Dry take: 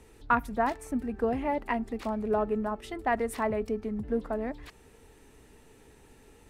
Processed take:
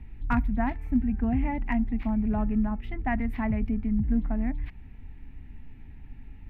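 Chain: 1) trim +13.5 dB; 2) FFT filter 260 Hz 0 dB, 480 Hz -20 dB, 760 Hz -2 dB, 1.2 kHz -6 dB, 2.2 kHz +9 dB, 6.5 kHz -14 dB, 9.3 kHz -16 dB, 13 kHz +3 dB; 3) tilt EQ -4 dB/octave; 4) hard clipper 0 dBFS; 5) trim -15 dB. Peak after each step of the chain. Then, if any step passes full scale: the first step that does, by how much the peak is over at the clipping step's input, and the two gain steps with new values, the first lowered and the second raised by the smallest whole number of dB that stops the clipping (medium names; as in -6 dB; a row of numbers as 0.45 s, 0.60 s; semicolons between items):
+1.0 dBFS, -1.5 dBFS, +3.0 dBFS, 0.0 dBFS, -15.0 dBFS; step 1, 3.0 dB; step 1 +10.5 dB, step 5 -12 dB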